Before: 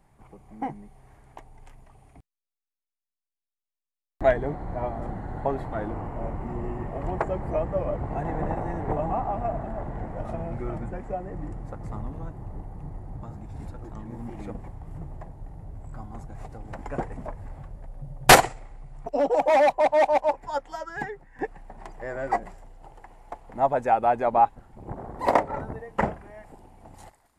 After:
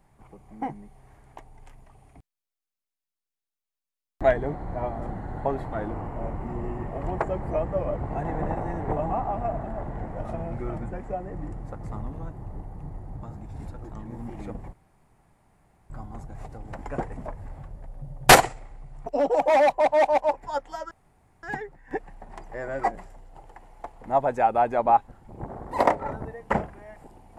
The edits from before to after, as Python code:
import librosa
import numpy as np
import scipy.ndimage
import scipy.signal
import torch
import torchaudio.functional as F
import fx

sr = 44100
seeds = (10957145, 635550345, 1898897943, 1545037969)

y = fx.edit(x, sr, fx.room_tone_fill(start_s=14.73, length_s=1.17),
    fx.insert_room_tone(at_s=20.91, length_s=0.52), tone=tone)